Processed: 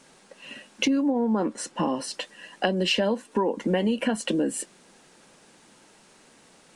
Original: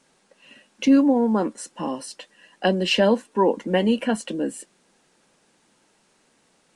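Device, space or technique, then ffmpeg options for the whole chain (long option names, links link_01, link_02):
serial compression, peaks first: -filter_complex "[0:a]asettb=1/sr,asplit=3[link_01][link_02][link_03];[link_01]atrim=end=1.104[link_04];[link_02]atrim=start=1.1:end=2.14,asetpts=PTS-STARTPTS,afade=type=in:duration=0.004:curve=qsin,afade=type=out:start_time=1.036:duration=0.004:curve=qsin,highshelf=frequency=7500:gain=-11[link_05];[link_03]atrim=start=2.136[link_06];[link_04][link_05]acrossfade=duration=0.004:curve1=hsin:curve2=qsin[link_07];[link_07][link_06]acrossfade=duration=0.004:curve1=qsin:curve2=hsin,acompressor=threshold=-25dB:ratio=4,acompressor=threshold=-31dB:ratio=2,volume=7.5dB"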